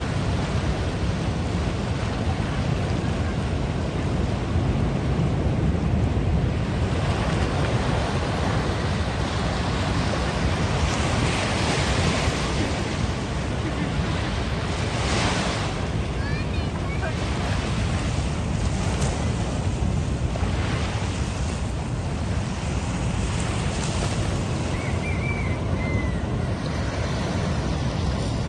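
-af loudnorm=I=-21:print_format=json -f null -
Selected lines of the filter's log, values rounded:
"input_i" : "-25.1",
"input_tp" : "-9.7",
"input_lra" : "2.2",
"input_thresh" : "-35.1",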